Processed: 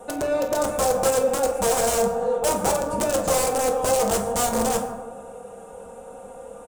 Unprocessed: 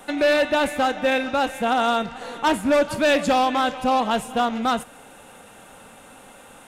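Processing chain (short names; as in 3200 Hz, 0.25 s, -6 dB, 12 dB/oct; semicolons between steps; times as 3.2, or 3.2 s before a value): compressor 3:1, threshold -23 dBFS, peak gain reduction 6 dB; high shelf 2600 Hz -11.5 dB; comb 4.2 ms, depth 62%; analogue delay 0.165 s, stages 2048, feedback 37%, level -12 dB; wrapped overs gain 18.5 dB; ten-band EQ 125 Hz +8 dB, 250 Hz -8 dB, 500 Hz +12 dB, 2000 Hz -9 dB, 4000 Hz -6 dB, 8000 Hz +11 dB; on a send at -2 dB: reverb RT60 0.95 s, pre-delay 7 ms; on the sum: gain -2 dB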